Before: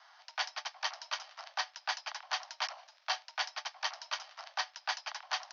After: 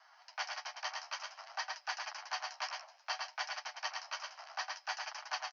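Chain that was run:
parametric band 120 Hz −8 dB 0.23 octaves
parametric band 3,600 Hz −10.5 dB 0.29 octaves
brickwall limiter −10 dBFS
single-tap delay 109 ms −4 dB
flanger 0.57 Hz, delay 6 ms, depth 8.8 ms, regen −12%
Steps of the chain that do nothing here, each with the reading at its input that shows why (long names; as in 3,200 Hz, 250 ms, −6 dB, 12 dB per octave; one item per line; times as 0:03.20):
parametric band 120 Hz: nothing at its input below 510 Hz
brickwall limiter −10 dBFS: peak of its input −18.5 dBFS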